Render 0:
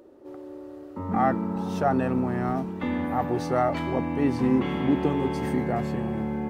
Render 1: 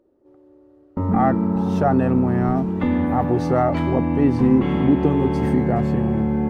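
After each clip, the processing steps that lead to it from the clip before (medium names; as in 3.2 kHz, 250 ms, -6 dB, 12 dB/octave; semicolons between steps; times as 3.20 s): gate with hold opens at -28 dBFS; tilt EQ -2 dB/octave; in parallel at +3 dB: compression, threshold -28 dBFS, peak gain reduction 14 dB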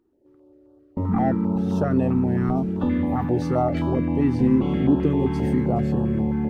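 step-sequenced notch 7.6 Hz 560–2100 Hz; trim -2 dB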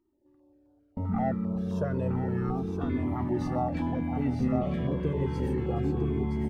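on a send: delay 969 ms -5.5 dB; on the sum: Shepard-style flanger falling 0.31 Hz; trim -3 dB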